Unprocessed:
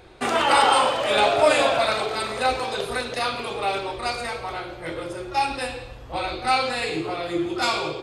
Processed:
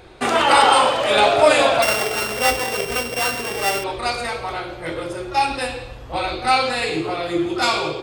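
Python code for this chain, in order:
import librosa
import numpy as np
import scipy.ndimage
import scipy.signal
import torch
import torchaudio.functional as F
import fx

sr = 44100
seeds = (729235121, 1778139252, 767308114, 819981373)

y = fx.sample_sort(x, sr, block=16, at=(1.82, 3.84))
y = y * librosa.db_to_amplitude(4.0)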